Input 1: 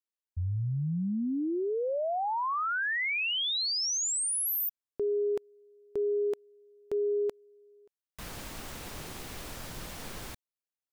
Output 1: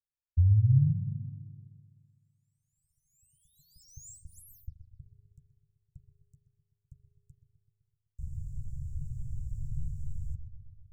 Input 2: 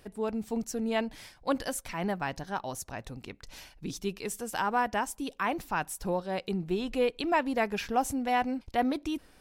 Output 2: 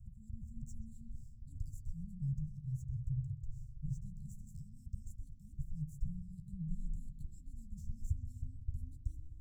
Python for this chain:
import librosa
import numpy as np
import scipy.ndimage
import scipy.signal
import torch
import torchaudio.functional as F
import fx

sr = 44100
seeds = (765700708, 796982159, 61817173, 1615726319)

p1 = scipy.ndimage.median_filter(x, 5, mode='constant')
p2 = scipy.signal.sosfilt(scipy.signal.cheby1(5, 1.0, [140.0, 7400.0], 'bandstop', fs=sr, output='sos'), p1)
p3 = fx.rider(p2, sr, range_db=3, speed_s=2.0)
p4 = p2 + (p3 * 10.0 ** (-1.5 / 20.0))
p5 = fx.air_absorb(p4, sr, metres=180.0)
p6 = fx.doubler(p5, sr, ms=13.0, db=-12.5)
p7 = p6 + fx.echo_bbd(p6, sr, ms=127, stages=4096, feedback_pct=64, wet_db=-11, dry=0)
p8 = fx.rev_spring(p7, sr, rt60_s=1.5, pass_ms=(39,), chirp_ms=50, drr_db=10.0)
y = p8 * 10.0 ** (4.5 / 20.0)